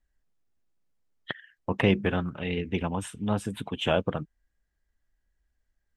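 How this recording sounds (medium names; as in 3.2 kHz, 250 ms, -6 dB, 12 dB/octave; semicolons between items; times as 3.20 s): noise floor -79 dBFS; spectral tilt -5.0 dB/octave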